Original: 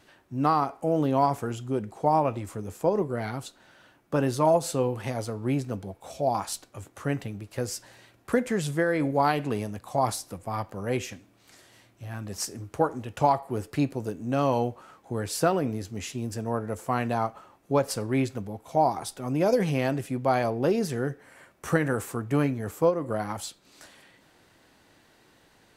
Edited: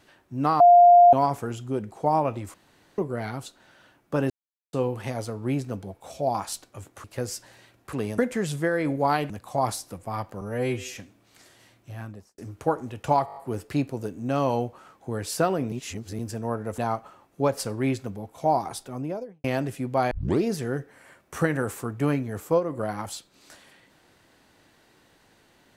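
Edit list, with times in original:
0.6–1.13 bleep 702 Hz -9.5 dBFS
2.54–2.98 room tone
4.3–4.73 mute
7.04–7.44 cut
9.45–9.7 move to 8.33
10.81–11.08 stretch 2×
12.07–12.51 studio fade out
13.39 stutter 0.02 s, 6 plays
15.75–16.22 reverse
16.81–17.09 cut
19.04–19.75 studio fade out
20.42 tape start 0.32 s

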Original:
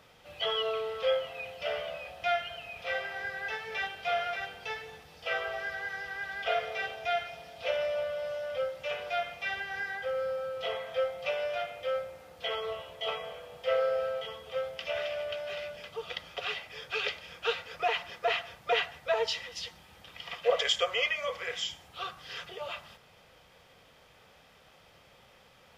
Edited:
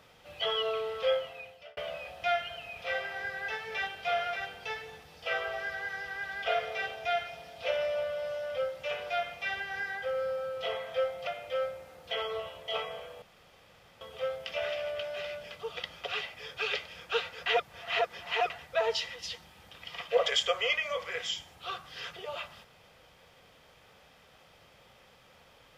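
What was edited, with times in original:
1.12–1.77 fade out
11.27–11.6 cut
13.55–14.34 room tone
17.79–18.83 reverse

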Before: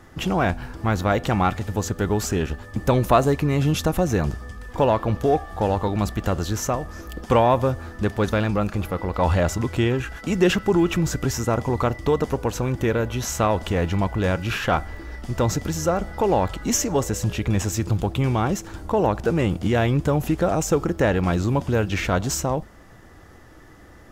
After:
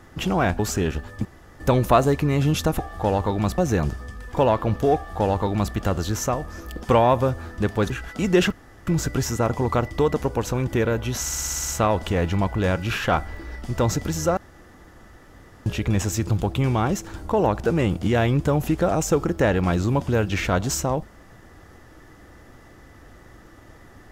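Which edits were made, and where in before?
0.59–2.14 cut
2.8 insert room tone 0.35 s
5.36–6.15 copy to 3.99
8.31–9.98 cut
10.6–10.95 room tone
13.28 stutter 0.06 s, 9 plays
15.97–17.26 room tone

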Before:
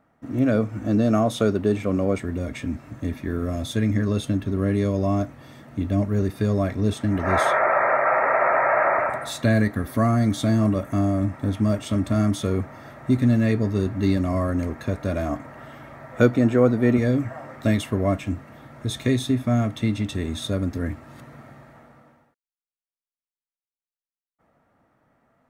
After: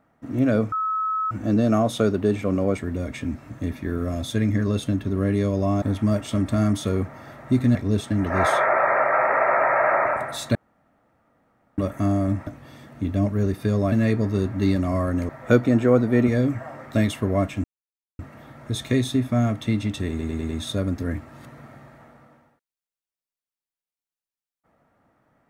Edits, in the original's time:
0.72 add tone 1290 Hz -21.5 dBFS 0.59 s
5.23–6.68 swap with 11.4–13.33
9.48–10.71 room tone
14.7–15.99 cut
18.34 insert silence 0.55 s
20.24 stutter 0.10 s, 5 plays

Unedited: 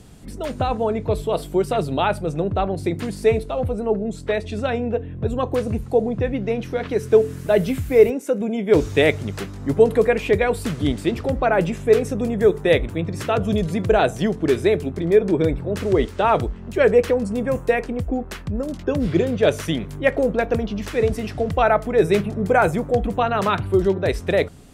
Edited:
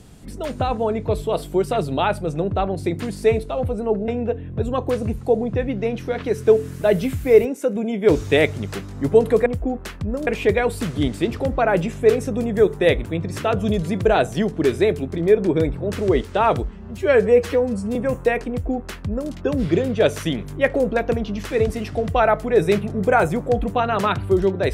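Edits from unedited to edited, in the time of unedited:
4.08–4.73 cut
16.55–17.38 stretch 1.5×
17.92–18.73 copy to 10.11

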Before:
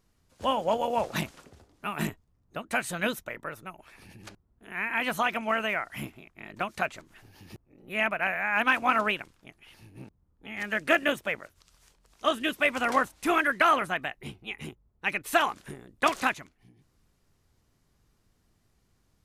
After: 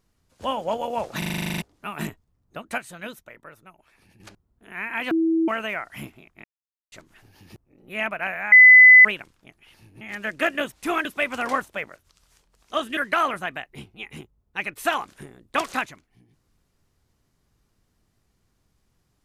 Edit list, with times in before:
1.18 stutter in place 0.04 s, 11 plays
2.78–4.2 gain -7.5 dB
5.11–5.48 bleep 326 Hz -17.5 dBFS
6.44–6.92 mute
8.52–9.05 bleep 2010 Hz -6 dBFS
10.01–10.49 cut
11.2–12.48 swap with 13.12–13.45

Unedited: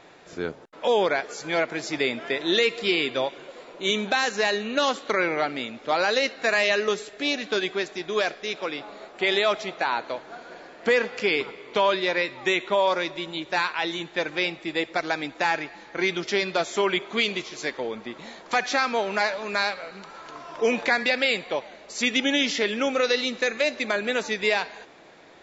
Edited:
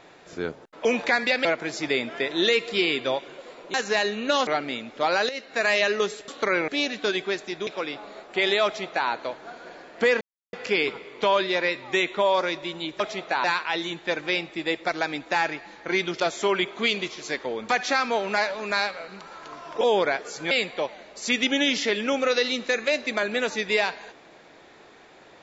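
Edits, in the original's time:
0.85–1.55 swap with 20.64–21.24
3.84–4.22 cut
4.95–5.35 move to 7.16
6.17–6.56 fade in, from -14 dB
8.15–8.52 cut
9.5–9.94 copy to 13.53
11.06 insert silence 0.32 s
16.29–16.54 cut
18.03–18.52 cut

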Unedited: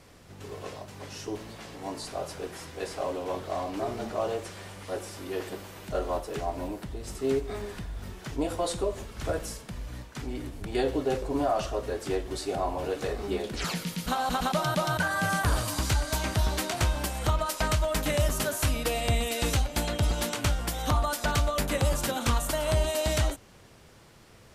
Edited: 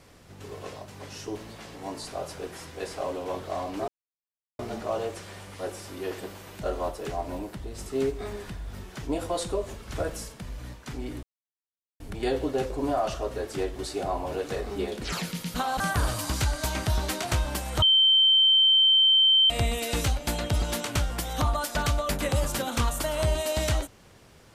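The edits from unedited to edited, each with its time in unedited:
3.88 insert silence 0.71 s
10.52 insert silence 0.77 s
14.32–15.29 cut
17.31–18.99 bleep 3110 Hz -16 dBFS

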